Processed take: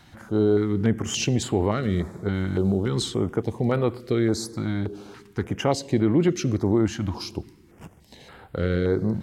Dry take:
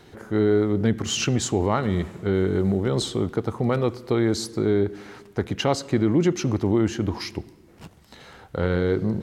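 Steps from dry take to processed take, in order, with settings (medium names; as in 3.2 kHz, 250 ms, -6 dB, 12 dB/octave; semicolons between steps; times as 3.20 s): step-sequenced notch 3.5 Hz 420–6000 Hz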